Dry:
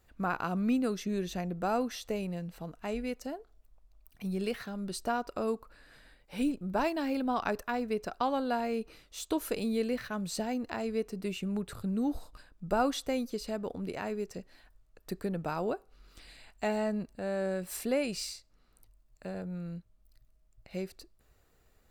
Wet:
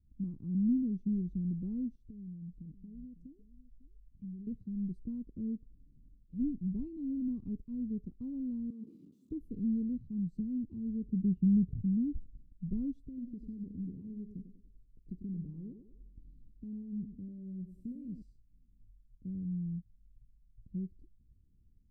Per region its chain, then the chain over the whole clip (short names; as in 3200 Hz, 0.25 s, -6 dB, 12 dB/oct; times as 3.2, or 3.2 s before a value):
1.95–4.47 compressor, threshold -43 dBFS + echo 0.552 s -16 dB
8.7–9.31 infinite clipping + Chebyshev high-pass 230 Hz, order 3 + bell 1300 Hz +5.5 dB 0.55 oct
11.03–11.81 HPF 94 Hz 6 dB/oct + tilt -3 dB/oct
13.03–18.22 compressor 3:1, threshold -37 dBFS + thinning echo 96 ms, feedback 61%, high-pass 350 Hz, level -4 dB
whole clip: AGC gain up to 3 dB; inverse Chebyshev low-pass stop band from 630 Hz, stop band 50 dB